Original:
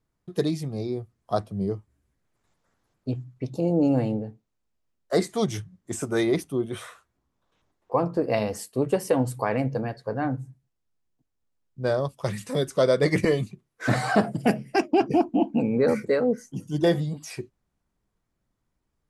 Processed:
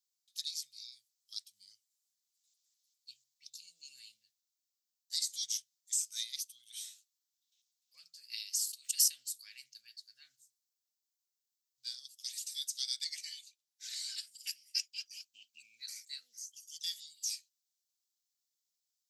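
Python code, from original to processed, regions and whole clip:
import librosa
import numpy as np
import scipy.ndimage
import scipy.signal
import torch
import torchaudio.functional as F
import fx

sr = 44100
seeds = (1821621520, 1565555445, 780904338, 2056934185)

y = fx.chain(x, sr, fx.highpass(hz=390.0, slope=12),
    fx.sustainer(db_per_s=85.0), at=(8.21, 9.08))
y = fx.chain(y, sr, fx.highpass(hz=860.0, slope=12),
    fx.high_shelf(hz=4500.0, db=-7.5), at=(13.04, 14.18))
y = scipy.signal.sosfilt(scipy.signal.cheby2(4, 70, 980.0, 'highpass', fs=sr, output='sos'), y)
y = fx.peak_eq(y, sr, hz=9800.0, db=-13.5, octaves=0.25)
y = y * 10.0 ** (6.5 / 20.0)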